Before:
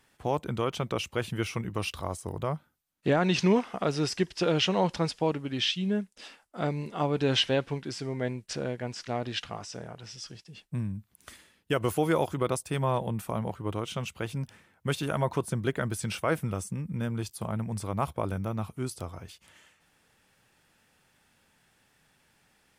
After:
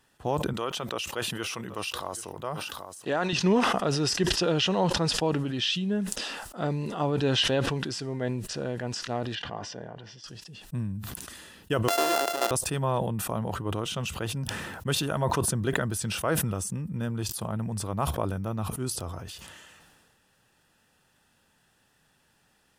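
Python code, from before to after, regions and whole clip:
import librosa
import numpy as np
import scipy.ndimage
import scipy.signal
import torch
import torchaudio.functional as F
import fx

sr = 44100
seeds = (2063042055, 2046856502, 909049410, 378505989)

y = fx.chain(x, sr, fx.highpass(hz=550.0, slope=6),
    fx.echo_single(ms=780, db=-22.5), at=(0.53, 3.33))
y = fx.chain(y, sr, fx.lowpass(hz=3300.0, slope=12),
    fx.notch_comb(f0_hz=1300.0), at=(9.35, 10.24))
y = fx.chain(y, sr, fx.sample_sort(block=64),
    fx.highpass(hz=340.0, slope=24),
    fx.band_squash(depth_pct=70), at=(11.88, 12.51))
y = fx.notch(y, sr, hz=2200.0, q=6.0)
y = fx.sustainer(y, sr, db_per_s=29.0)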